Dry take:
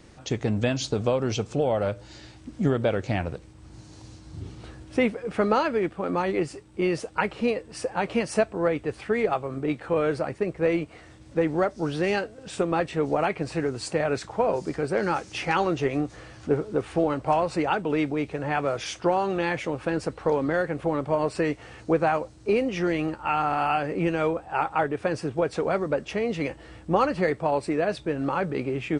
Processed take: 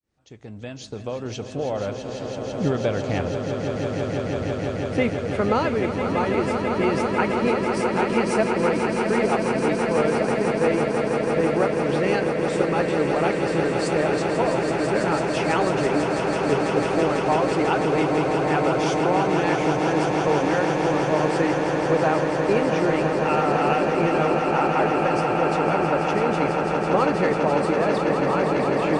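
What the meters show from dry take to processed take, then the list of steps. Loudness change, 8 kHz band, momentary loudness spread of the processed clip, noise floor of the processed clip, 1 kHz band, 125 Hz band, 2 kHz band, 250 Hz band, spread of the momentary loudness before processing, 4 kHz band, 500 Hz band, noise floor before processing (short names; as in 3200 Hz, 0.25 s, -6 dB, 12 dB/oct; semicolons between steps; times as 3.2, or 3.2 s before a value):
+4.5 dB, +4.0 dB, 6 LU, -31 dBFS, +5.0 dB, +4.0 dB, +5.0 dB, +4.5 dB, 6 LU, +4.0 dB, +4.5 dB, -49 dBFS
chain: opening faded in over 2.34 s; swelling echo 0.165 s, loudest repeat 8, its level -8 dB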